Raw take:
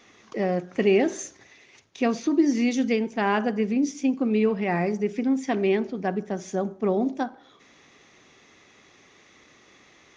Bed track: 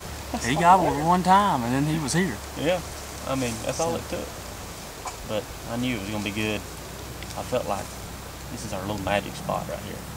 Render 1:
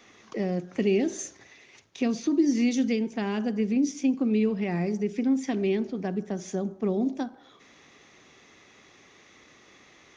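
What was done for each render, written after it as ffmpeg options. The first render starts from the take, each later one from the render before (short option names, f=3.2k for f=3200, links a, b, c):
-filter_complex "[0:a]acrossover=split=380|3000[a][b][c];[b]acompressor=threshold=-36dB:ratio=6[d];[a][d][c]amix=inputs=3:normalize=0"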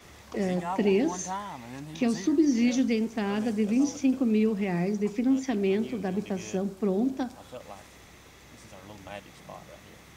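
-filter_complex "[1:a]volume=-17dB[a];[0:a][a]amix=inputs=2:normalize=0"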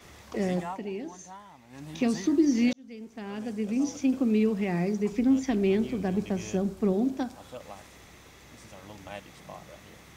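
-filter_complex "[0:a]asettb=1/sr,asplit=3[a][b][c];[a]atrim=end=5.124[d];[b]atrim=start=5.12:end=6.93,asetpts=PTS-STARTPTS,afade=t=in:d=0.004:c=qsin,afade=t=out:st=1.806:d=0.004:c=qsin,lowshelf=f=99:g=11.5[e];[c]atrim=start=6.926[f];[d][e]acrossfade=d=0.004:c1=hsin:c2=qsin[g];[g][f]acrossfade=d=0.004:c1=qsin:c2=hsin,asplit=4[h][i][j][k];[h]atrim=end=0.8,asetpts=PTS-STARTPTS,afade=t=out:st=0.61:d=0.19:silence=0.251189[l];[i]atrim=start=0.8:end=1.69,asetpts=PTS-STARTPTS,volume=-12dB[m];[j]atrim=start=1.69:end=2.73,asetpts=PTS-STARTPTS,afade=t=in:d=0.19:silence=0.251189,afade=t=out:st=1.036:d=0.004:c=hsin[n];[k]atrim=start=2.73,asetpts=PTS-STARTPTS,afade=t=in:d=1.5[o];[l][m][n][o]concat=n=4:v=0:a=1"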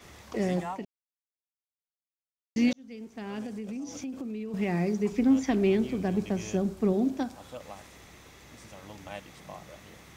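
-filter_complex "[0:a]asettb=1/sr,asplit=3[a][b][c];[a]atrim=end=3.464[d];[b]atrim=start=3.46:end=4.54,asetpts=PTS-STARTPTS,afade=t=in:d=0.004:c=qsin,afade=t=out:st=1.076:d=0.004:c=qsin,acompressor=threshold=-34dB:ratio=6:attack=3.2:release=140:knee=1:detection=peak[e];[c]atrim=start=4.536[f];[d][e]acrossfade=d=0.004:c1=hsin:c2=qsin[g];[g][f]acrossfade=d=0.004:c1=qsin:c2=hsin,asettb=1/sr,asplit=3[h][i][j];[h]atrim=end=5.194[k];[i]atrim=start=5.19:end=5.7,asetpts=PTS-STARTPTS,afade=t=in:d=0.004:c=qsin,afade=t=out:st=0.506:d=0.004:c=qsin,equalizer=f=1.1k:w=0.65:g=3.5[l];[j]atrim=start=5.696[m];[k][l]acrossfade=d=0.004:c1=hsin:c2=qsin[n];[n][m]acrossfade=d=0.004:c1=qsin:c2=hsin,asplit=3[o][p][q];[o]atrim=end=0.85,asetpts=PTS-STARTPTS,afade=t=out:st=0.846:d=0.004:c=hsin[r];[p]atrim=start=0.85:end=2.56,asetpts=PTS-STARTPTS,volume=0[s];[q]atrim=start=2.56,asetpts=PTS-STARTPTS,afade=t=in:d=0.004:c=hsin[t];[r][s][t]concat=n=3:v=0:a=1"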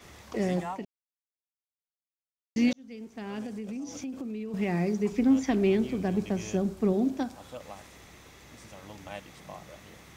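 -af anull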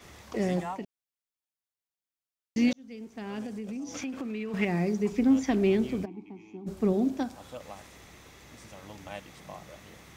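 -filter_complex "[0:a]asettb=1/sr,asplit=3[a][b][c];[a]atrim=end=3.944[d];[b]atrim=start=3.94:end=4.65,asetpts=PTS-STARTPTS,afade=t=in:d=0.004:c=qsin,afade=t=out:st=0.706:d=0.004:c=qsin,equalizer=f=1.8k:t=o:w=2.2:g=11.5[e];[c]atrim=start=4.646[f];[d][e]acrossfade=d=0.004:c1=hsin:c2=qsin[g];[g][f]acrossfade=d=0.004:c1=qsin:c2=hsin,asplit=3[h][i][j];[h]afade=t=out:st=6.04:d=0.02[k];[i]asplit=3[l][m][n];[l]bandpass=f=300:t=q:w=8,volume=0dB[o];[m]bandpass=f=870:t=q:w=8,volume=-6dB[p];[n]bandpass=f=2.24k:t=q:w=8,volume=-9dB[q];[o][p][q]amix=inputs=3:normalize=0,afade=t=in:st=6.04:d=0.02,afade=t=out:st=6.66:d=0.02[r];[j]afade=t=in:st=6.66:d=0.02[s];[k][r][s]amix=inputs=3:normalize=0"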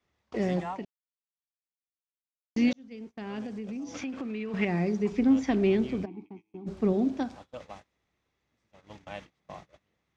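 -af "lowpass=5.1k,agate=range=-27dB:threshold=-44dB:ratio=16:detection=peak"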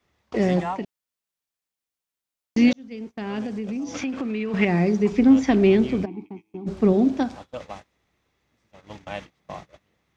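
-af "volume=7.5dB"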